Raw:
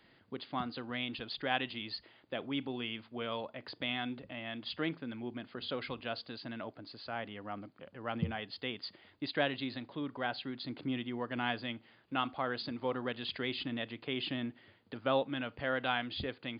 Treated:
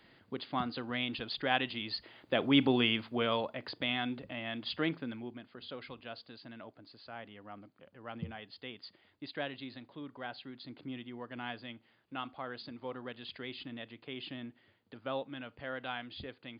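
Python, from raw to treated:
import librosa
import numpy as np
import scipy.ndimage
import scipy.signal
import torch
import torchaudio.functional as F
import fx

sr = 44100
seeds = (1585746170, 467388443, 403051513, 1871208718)

y = fx.gain(x, sr, db=fx.line((1.87, 2.5), (2.66, 12.0), (3.79, 2.5), (5.04, 2.5), (5.45, -6.5)))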